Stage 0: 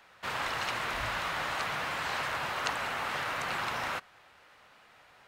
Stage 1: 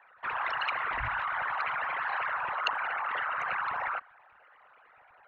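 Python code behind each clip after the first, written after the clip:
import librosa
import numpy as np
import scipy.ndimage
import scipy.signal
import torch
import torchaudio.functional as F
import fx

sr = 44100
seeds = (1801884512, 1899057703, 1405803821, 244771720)

y = fx.envelope_sharpen(x, sr, power=3.0)
y = fx.dynamic_eq(y, sr, hz=2800.0, q=0.8, threshold_db=-51.0, ratio=4.0, max_db=5)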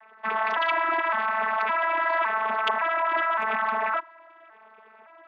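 y = fx.vocoder_arp(x, sr, chord='bare fifth', root=57, every_ms=562)
y = y * librosa.db_to_amplitude(8.0)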